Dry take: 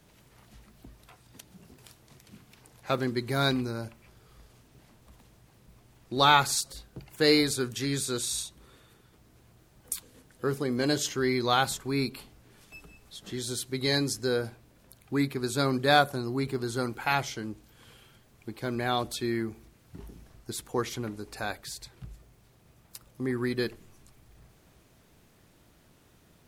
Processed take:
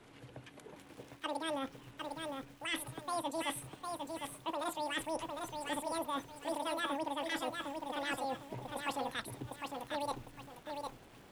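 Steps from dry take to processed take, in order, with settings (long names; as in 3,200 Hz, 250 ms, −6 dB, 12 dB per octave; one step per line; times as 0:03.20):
high shelf with overshoot 1,700 Hz −6.5 dB, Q 1.5
reversed playback
downward compressor 12 to 1, threshold −35 dBFS, peak gain reduction 20.5 dB
reversed playback
downsampling to 11,025 Hz
wrong playback speed 33 rpm record played at 78 rpm
feedback echo at a low word length 755 ms, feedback 35%, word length 10 bits, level −4 dB
level +1 dB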